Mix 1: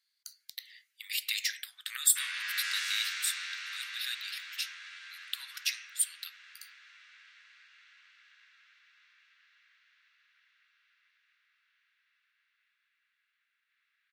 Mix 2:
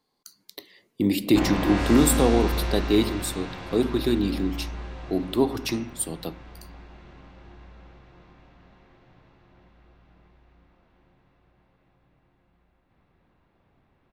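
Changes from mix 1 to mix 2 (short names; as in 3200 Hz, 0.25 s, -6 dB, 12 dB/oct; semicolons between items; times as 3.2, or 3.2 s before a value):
background: entry -0.80 s; master: remove steep high-pass 1500 Hz 48 dB/oct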